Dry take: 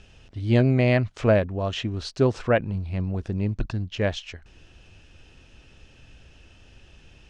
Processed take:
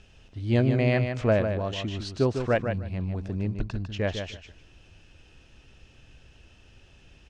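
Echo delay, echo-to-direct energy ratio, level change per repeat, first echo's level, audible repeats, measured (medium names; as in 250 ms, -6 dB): 151 ms, -7.0 dB, -15.0 dB, -7.0 dB, 2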